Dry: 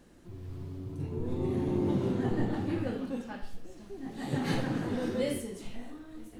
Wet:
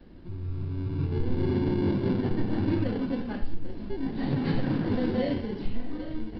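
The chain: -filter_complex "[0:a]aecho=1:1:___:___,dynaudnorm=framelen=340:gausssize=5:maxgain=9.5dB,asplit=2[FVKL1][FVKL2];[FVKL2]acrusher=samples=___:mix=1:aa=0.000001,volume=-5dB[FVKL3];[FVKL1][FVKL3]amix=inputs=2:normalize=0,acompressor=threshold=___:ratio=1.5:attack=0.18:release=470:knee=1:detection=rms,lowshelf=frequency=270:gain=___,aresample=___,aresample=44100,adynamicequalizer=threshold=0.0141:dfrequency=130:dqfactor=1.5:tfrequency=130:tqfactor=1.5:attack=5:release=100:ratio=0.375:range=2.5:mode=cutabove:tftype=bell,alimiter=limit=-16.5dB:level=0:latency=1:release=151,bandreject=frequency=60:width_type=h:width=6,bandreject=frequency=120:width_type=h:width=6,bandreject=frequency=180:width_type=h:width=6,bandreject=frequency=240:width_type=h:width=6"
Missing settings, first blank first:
797, 0.1, 35, -42dB, 9.5, 11025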